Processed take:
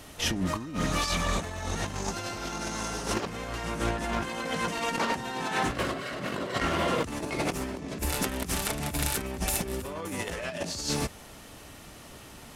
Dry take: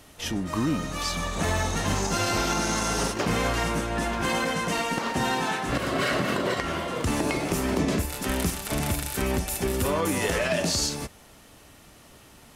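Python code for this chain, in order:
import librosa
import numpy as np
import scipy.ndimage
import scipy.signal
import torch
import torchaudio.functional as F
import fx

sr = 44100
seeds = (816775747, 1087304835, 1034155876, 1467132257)

y = fx.over_compress(x, sr, threshold_db=-30.0, ratio=-0.5)
y = fx.doppler_dist(y, sr, depth_ms=0.16)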